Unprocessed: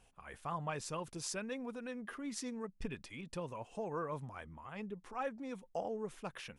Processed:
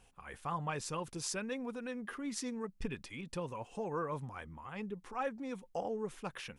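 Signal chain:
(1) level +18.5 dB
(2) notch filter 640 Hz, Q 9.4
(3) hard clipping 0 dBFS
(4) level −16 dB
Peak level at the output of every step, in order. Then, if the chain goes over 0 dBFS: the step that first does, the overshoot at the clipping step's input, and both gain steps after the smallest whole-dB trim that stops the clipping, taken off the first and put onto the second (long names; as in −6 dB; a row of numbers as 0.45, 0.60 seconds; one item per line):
−5.5, −5.5, −5.5, −21.5 dBFS
no step passes full scale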